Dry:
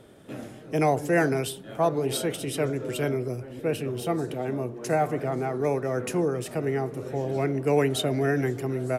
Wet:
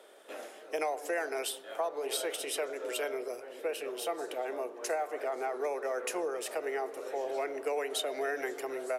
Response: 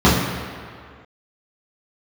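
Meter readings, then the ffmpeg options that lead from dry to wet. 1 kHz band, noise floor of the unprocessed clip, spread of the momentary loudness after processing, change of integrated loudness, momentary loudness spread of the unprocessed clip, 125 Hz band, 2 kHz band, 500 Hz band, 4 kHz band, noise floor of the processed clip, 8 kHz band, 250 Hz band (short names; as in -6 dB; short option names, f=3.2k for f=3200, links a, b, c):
-6.5 dB, -44 dBFS, 5 LU, -8.0 dB, 8 LU, under -40 dB, -5.0 dB, -7.5 dB, -3.0 dB, -50 dBFS, -2.0 dB, -17.0 dB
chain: -filter_complex "[0:a]highpass=f=460:w=0.5412,highpass=f=460:w=1.3066,acompressor=threshold=-30dB:ratio=6,asplit=2[a][b];[1:a]atrim=start_sample=2205,adelay=92[c];[b][c]afir=irnorm=-1:irlink=0,volume=-46dB[d];[a][d]amix=inputs=2:normalize=0"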